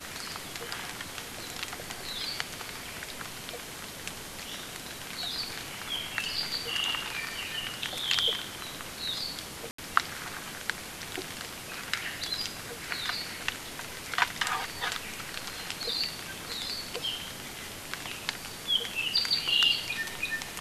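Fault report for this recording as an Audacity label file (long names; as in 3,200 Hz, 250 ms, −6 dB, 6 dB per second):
9.710000	9.780000	drop-out 74 ms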